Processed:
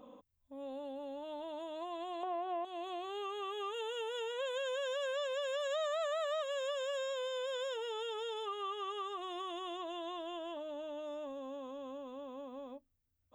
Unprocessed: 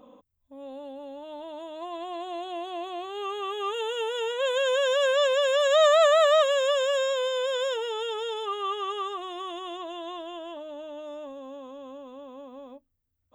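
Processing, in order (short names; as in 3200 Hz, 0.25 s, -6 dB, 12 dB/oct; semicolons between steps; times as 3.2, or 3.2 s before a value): 2.23–2.65 graphic EQ 500/1000/2000/4000/8000 Hz +11/+9/+7/-6/-12 dB; compressor 3:1, threshold -36 dBFS, peak gain reduction 15 dB; gain -3 dB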